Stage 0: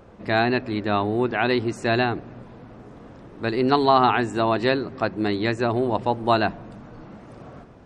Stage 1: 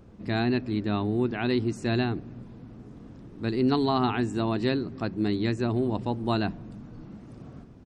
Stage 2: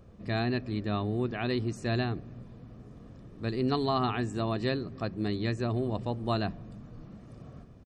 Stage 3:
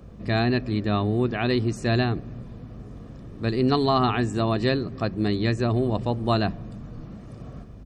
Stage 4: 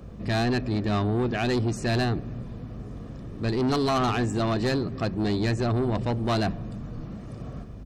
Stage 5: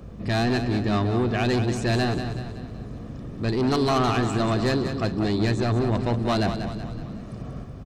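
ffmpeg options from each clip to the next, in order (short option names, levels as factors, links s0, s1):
-af "firequalizer=gain_entry='entry(250,0);entry(550,-11);entry(1800,-10);entry(2500,-8);entry(4900,-4)':delay=0.05:min_phase=1"
-af "aecho=1:1:1.7:0.36,volume=0.708"
-af "acontrast=87,aeval=exprs='val(0)+0.00562*(sin(2*PI*50*n/s)+sin(2*PI*2*50*n/s)/2+sin(2*PI*3*50*n/s)/3+sin(2*PI*4*50*n/s)/4+sin(2*PI*5*50*n/s)/5)':c=same"
-af "asoftclip=type=tanh:threshold=0.075,volume=1.33"
-af "aecho=1:1:188|376|564|752|940:0.376|0.18|0.0866|0.0416|0.02,volume=1.19"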